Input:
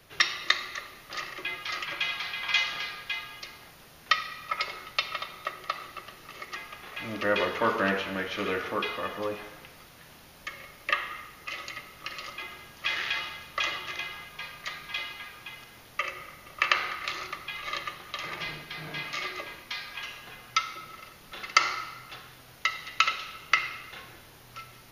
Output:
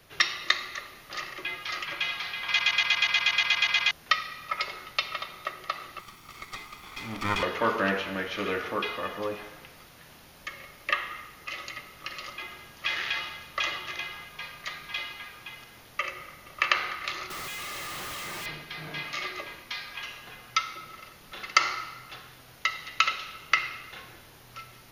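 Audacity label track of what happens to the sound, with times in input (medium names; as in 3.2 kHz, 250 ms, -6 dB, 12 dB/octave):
2.470000	2.470000	stutter in place 0.12 s, 12 plays
5.990000	7.430000	comb filter that takes the minimum delay 0.88 ms
17.300000	18.460000	one-bit comparator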